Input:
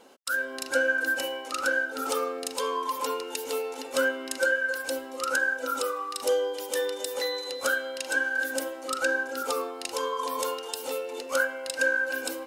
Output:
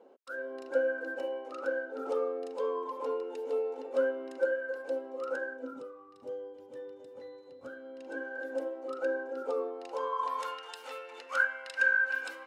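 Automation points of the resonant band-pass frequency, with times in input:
resonant band-pass, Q 1.5
0:05.43 460 Hz
0:05.90 130 Hz
0:07.63 130 Hz
0:08.31 440 Hz
0:09.72 440 Hz
0:10.49 1,600 Hz

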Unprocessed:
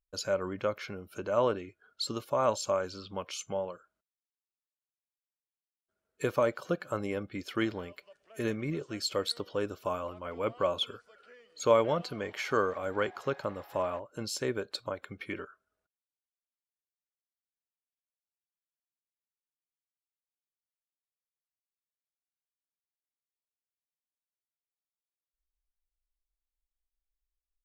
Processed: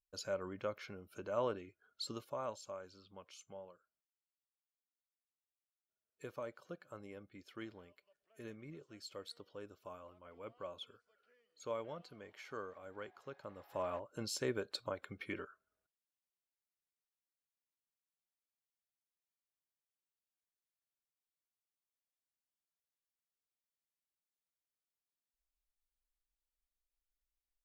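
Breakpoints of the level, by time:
0:02.15 −9 dB
0:02.61 −17.5 dB
0:13.34 −17.5 dB
0:13.96 −5 dB

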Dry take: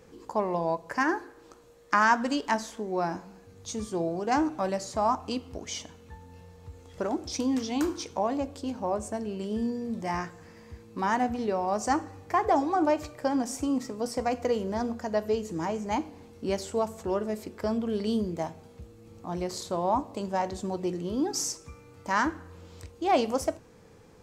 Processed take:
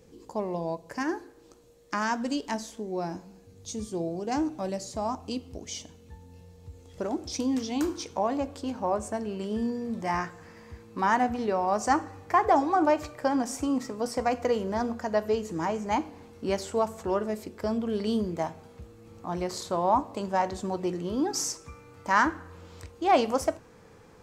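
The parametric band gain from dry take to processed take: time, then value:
parametric band 1,300 Hz 1.8 octaves
0:06.69 −9 dB
0:07.20 −2.5 dB
0:07.87 −2.5 dB
0:08.50 +4 dB
0:17.24 +4 dB
0:17.52 −2.5 dB
0:18.17 +4.5 dB

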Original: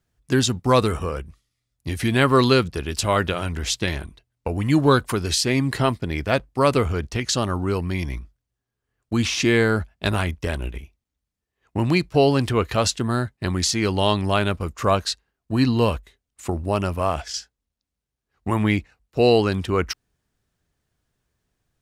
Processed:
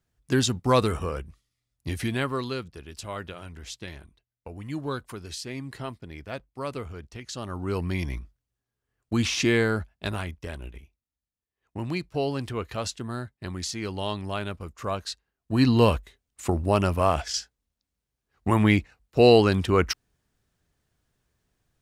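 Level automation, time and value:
0:01.94 −3.5 dB
0:02.44 −15 dB
0:07.30 −15 dB
0:07.82 −3 dB
0:09.42 −3 dB
0:10.41 −10.5 dB
0:14.97 −10.5 dB
0:15.75 +0.5 dB

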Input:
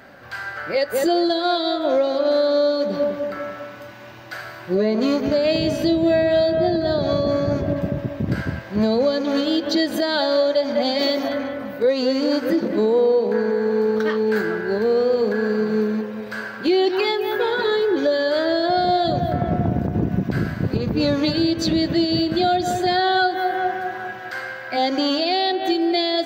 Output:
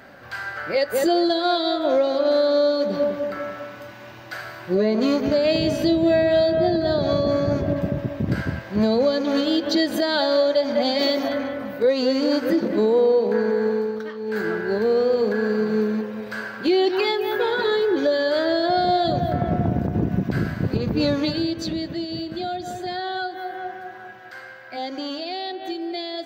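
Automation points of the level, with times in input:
0:13.67 −0.5 dB
0:14.14 −13 dB
0:14.47 −1 dB
0:21.05 −1 dB
0:21.97 −9.5 dB

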